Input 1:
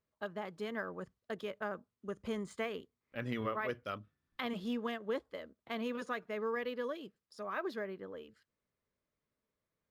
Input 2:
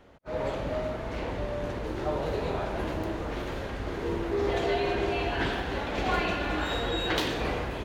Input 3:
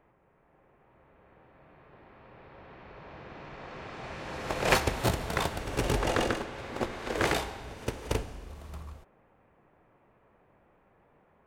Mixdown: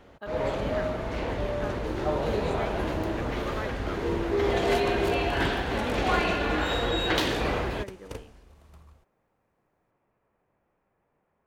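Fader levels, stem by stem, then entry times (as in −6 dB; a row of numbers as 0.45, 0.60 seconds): 0.0, +2.5, −10.0 decibels; 0.00, 0.00, 0.00 seconds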